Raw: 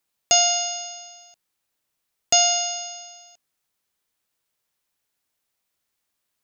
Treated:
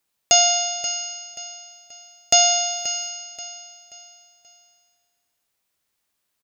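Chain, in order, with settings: feedback echo 0.531 s, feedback 37%, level -13 dB; 2.66–3.09 requantised 10-bit, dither none; gain +2 dB

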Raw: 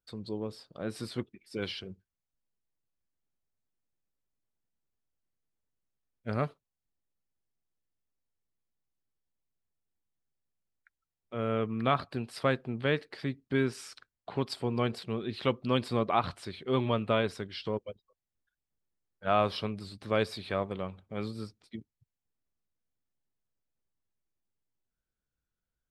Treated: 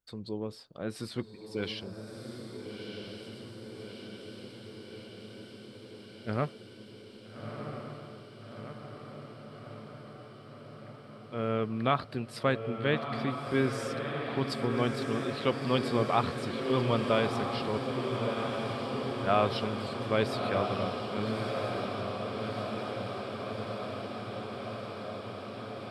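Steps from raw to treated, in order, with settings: diffused feedback echo 1.311 s, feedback 77%, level -5 dB

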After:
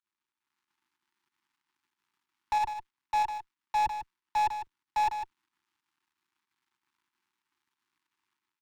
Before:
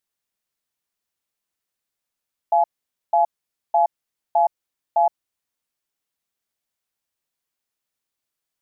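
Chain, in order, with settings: switching dead time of 0.11 ms; Chebyshev band-stop 360–870 Hz, order 3; AGC gain up to 9 dB; tube stage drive 24 dB, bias 0.8; pump 93 bpm, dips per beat 2, -15 dB, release 88 ms; overdrive pedal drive 28 dB, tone 1000 Hz, clips at -19.5 dBFS; echo 0.152 s -8.5 dB; 2.53–5.04 three-band expander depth 40%

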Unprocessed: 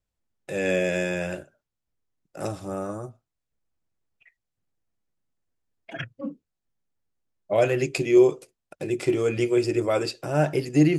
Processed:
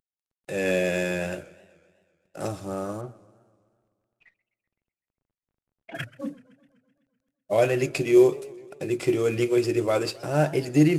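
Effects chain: CVSD 64 kbps; 3.01–5.95 LPF 2800 Hz 12 dB/oct; warbling echo 0.127 s, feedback 64%, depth 188 cents, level -21.5 dB

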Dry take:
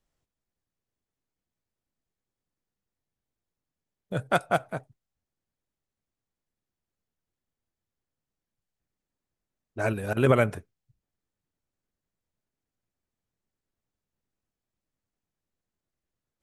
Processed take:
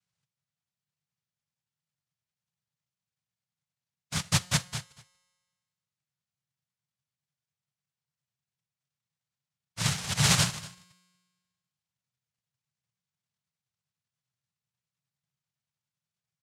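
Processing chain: noise vocoder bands 1; resonant low shelf 210 Hz +13.5 dB, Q 3; resonator 180 Hz, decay 1.5 s, mix 40%; echo 0.237 s -19.5 dB

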